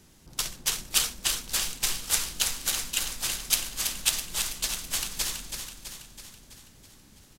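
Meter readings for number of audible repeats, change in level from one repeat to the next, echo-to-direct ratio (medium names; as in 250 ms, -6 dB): 6, -5.0 dB, -5.5 dB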